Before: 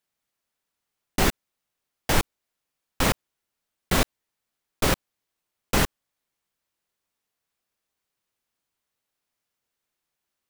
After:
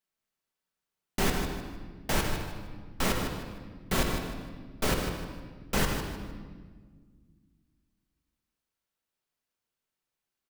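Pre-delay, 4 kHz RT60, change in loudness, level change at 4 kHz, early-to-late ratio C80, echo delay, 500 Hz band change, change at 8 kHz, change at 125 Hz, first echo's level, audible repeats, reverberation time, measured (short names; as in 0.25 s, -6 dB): 5 ms, 1.2 s, -6.5 dB, -5.0 dB, 4.0 dB, 0.153 s, -3.5 dB, -5.5 dB, -3.0 dB, -8.5 dB, 2, 1.6 s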